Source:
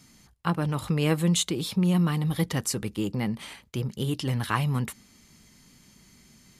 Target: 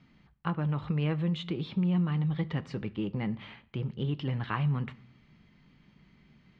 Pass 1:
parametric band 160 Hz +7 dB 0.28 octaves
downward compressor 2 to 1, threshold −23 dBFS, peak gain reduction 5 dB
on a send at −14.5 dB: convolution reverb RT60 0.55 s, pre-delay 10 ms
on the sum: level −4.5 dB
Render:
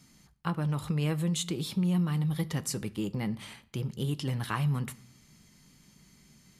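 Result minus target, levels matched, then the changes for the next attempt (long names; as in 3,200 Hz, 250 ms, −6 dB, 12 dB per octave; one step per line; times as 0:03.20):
4,000 Hz band +4.0 dB
add first: low-pass filter 3,200 Hz 24 dB per octave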